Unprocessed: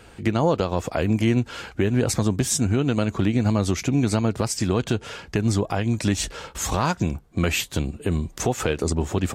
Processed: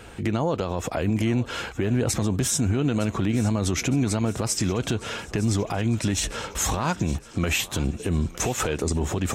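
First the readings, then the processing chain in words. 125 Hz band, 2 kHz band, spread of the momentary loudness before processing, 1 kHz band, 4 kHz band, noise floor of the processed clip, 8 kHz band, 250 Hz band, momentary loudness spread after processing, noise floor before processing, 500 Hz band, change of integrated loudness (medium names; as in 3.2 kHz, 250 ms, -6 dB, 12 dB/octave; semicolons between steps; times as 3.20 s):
-1.5 dB, -0.5 dB, 6 LU, -2.0 dB, 0.0 dB, -42 dBFS, +1.0 dB, -2.0 dB, 5 LU, -48 dBFS, -3.0 dB, -1.5 dB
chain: band-stop 4.6 kHz, Q 12; peak limiter -18.5 dBFS, peak gain reduction 9.5 dB; thinning echo 911 ms, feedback 57%, high-pass 380 Hz, level -16 dB; trim +4 dB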